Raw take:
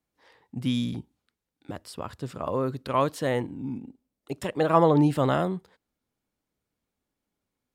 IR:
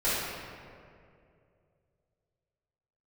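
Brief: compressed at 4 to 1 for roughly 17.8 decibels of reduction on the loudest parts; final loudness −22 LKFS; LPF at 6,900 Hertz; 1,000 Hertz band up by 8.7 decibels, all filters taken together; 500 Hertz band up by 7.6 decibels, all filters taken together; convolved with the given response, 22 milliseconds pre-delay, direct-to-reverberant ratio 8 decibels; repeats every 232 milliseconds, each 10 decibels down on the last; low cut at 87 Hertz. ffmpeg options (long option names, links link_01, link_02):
-filter_complex "[0:a]highpass=87,lowpass=6900,equalizer=frequency=500:width_type=o:gain=6.5,equalizer=frequency=1000:width_type=o:gain=8.5,acompressor=threshold=-29dB:ratio=4,aecho=1:1:232|464|696|928:0.316|0.101|0.0324|0.0104,asplit=2[link_01][link_02];[1:a]atrim=start_sample=2205,adelay=22[link_03];[link_02][link_03]afir=irnorm=-1:irlink=0,volume=-20.5dB[link_04];[link_01][link_04]amix=inputs=2:normalize=0,volume=10.5dB"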